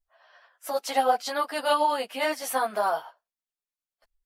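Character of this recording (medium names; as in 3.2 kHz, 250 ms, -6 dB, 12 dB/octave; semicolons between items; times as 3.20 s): tremolo triangle 9.5 Hz, depth 40%; a shimmering, thickened sound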